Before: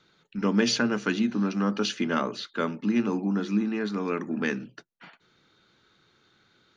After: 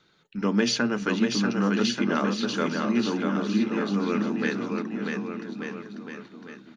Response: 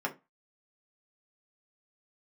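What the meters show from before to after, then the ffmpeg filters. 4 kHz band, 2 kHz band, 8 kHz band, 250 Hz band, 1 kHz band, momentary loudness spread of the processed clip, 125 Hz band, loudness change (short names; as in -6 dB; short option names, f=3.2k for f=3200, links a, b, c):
+2.0 dB, +2.0 dB, n/a, +2.0 dB, +2.0 dB, 15 LU, +2.0 dB, +1.0 dB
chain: -af "aecho=1:1:640|1184|1646|2039|2374:0.631|0.398|0.251|0.158|0.1"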